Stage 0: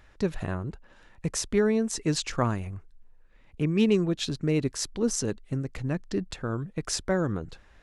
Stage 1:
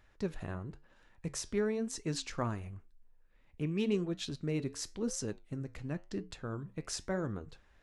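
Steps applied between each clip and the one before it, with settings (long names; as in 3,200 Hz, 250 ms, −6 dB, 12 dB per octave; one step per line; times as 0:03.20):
flanger 0.96 Hz, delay 7.9 ms, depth 5.3 ms, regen −79%
level −4.5 dB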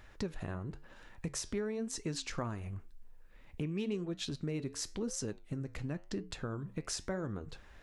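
downward compressor 3 to 1, threshold −47 dBFS, peak gain reduction 15 dB
level +9 dB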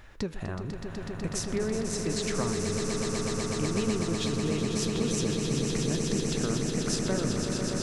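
echo that builds up and dies away 124 ms, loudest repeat 8, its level −7 dB
level +5 dB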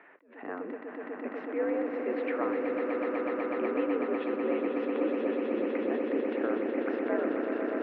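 single-sideband voice off tune +75 Hz 200–2,300 Hz
level that may rise only so fast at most 120 dB per second
level +1.5 dB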